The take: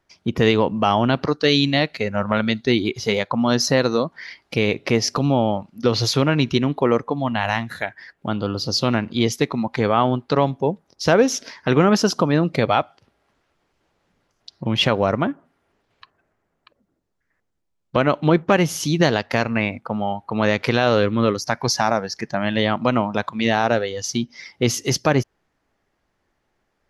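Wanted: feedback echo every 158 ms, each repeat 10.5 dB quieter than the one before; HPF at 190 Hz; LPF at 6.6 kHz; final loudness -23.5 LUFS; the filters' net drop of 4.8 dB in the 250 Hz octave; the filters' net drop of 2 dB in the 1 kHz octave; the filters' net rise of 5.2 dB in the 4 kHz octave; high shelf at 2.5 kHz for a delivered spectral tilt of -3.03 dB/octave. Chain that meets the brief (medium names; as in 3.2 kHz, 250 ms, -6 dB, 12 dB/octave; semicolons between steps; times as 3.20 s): high-pass 190 Hz; low-pass 6.6 kHz; peaking EQ 250 Hz -4 dB; peaking EQ 1 kHz -3.5 dB; treble shelf 2.5 kHz +4.5 dB; peaking EQ 4 kHz +3.5 dB; feedback delay 158 ms, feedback 30%, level -10.5 dB; trim -3 dB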